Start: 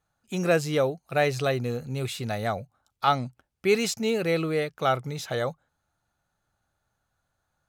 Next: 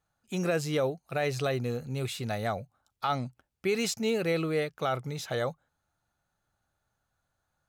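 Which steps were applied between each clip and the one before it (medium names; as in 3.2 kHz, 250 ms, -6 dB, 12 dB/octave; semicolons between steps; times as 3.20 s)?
peak limiter -16.5 dBFS, peak gain reduction 7.5 dB; trim -2.5 dB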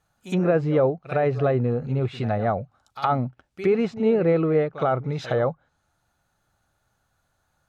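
pre-echo 66 ms -15 dB; low-pass that closes with the level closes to 1.2 kHz, closed at -28.5 dBFS; trim +8.5 dB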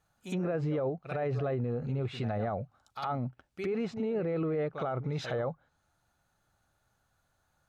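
peak limiter -21.5 dBFS, peak gain reduction 11 dB; trim -3.5 dB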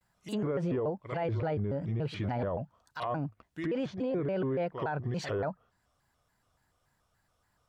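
vibrato with a chosen wave square 3.5 Hz, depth 250 cents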